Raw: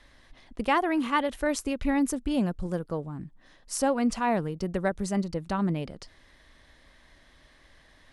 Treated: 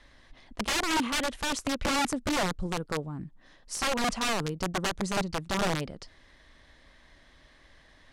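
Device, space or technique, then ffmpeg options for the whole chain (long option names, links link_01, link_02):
overflowing digital effects unit: -af "aeval=exprs='(mod(12.6*val(0)+1,2)-1)/12.6':channel_layout=same,lowpass=8700"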